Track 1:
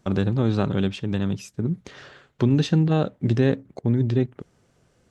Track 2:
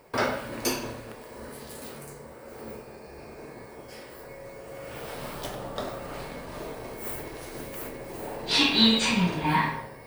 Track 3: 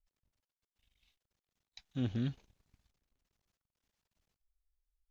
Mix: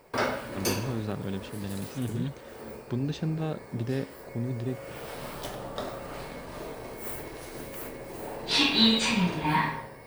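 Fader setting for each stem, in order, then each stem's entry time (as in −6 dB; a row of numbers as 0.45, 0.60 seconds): −11.0, −1.5, +2.0 decibels; 0.50, 0.00, 0.00 seconds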